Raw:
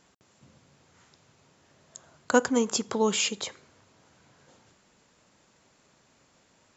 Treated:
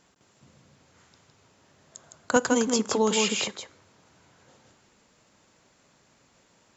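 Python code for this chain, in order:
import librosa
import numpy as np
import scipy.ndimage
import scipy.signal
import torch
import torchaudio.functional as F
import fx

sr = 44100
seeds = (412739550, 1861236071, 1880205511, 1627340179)

y = x + 10.0 ** (-5.0 / 20.0) * np.pad(x, (int(160 * sr / 1000.0), 0))[:len(x)]
y = fx.band_squash(y, sr, depth_pct=70, at=(2.36, 3.48))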